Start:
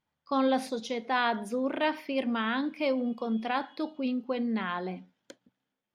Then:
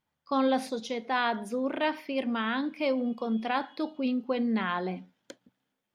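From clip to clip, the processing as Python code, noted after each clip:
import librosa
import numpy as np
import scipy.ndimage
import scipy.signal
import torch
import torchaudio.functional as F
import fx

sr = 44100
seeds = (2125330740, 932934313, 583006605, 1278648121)

y = fx.rider(x, sr, range_db=10, speed_s=2.0)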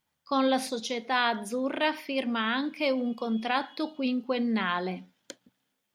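y = fx.high_shelf(x, sr, hz=2400.0, db=8.0)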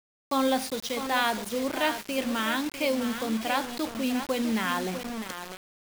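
y = x + 10.0 ** (-9.5 / 20.0) * np.pad(x, (int(652 * sr / 1000.0), 0))[:len(x)]
y = fx.quant_dither(y, sr, seeds[0], bits=6, dither='none')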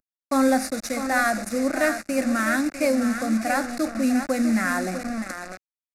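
y = fx.cvsd(x, sr, bps=64000)
y = fx.fixed_phaser(y, sr, hz=640.0, stages=8)
y = y * 10.0 ** (7.5 / 20.0)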